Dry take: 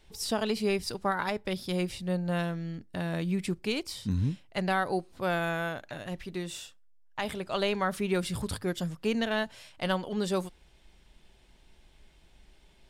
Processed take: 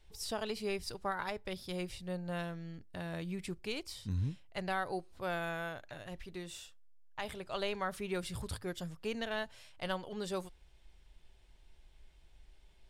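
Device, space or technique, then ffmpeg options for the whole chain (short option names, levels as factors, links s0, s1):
low shelf boost with a cut just above: -af "lowshelf=f=77:g=8,equalizer=f=220:t=o:w=1:g=-6,volume=0.447"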